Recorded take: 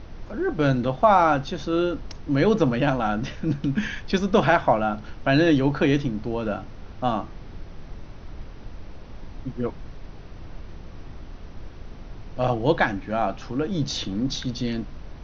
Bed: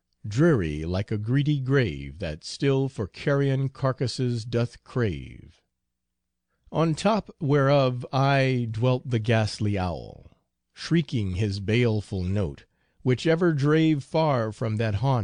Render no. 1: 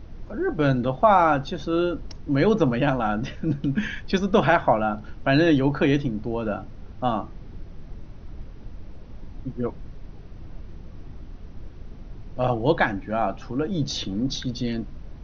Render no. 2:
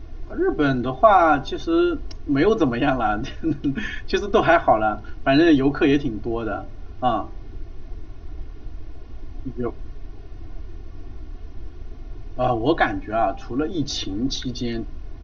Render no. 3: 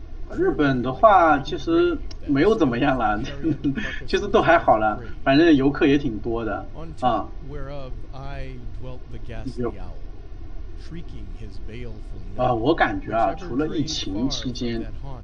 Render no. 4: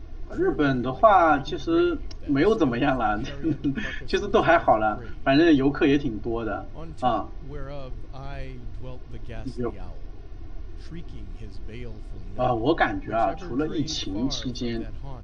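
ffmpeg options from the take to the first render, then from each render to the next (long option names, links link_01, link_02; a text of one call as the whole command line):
ffmpeg -i in.wav -af "afftdn=noise_reduction=7:noise_floor=-41" out.wav
ffmpeg -i in.wav -af "aecho=1:1:2.8:0.86,bandreject=frequency=197.4:width_type=h:width=4,bandreject=frequency=394.8:width_type=h:width=4,bandreject=frequency=592.2:width_type=h:width=4,bandreject=frequency=789.6:width_type=h:width=4,bandreject=frequency=987:width_type=h:width=4" out.wav
ffmpeg -i in.wav -i bed.wav -filter_complex "[1:a]volume=-15.5dB[link_01];[0:a][link_01]amix=inputs=2:normalize=0" out.wav
ffmpeg -i in.wav -af "volume=-2.5dB" out.wav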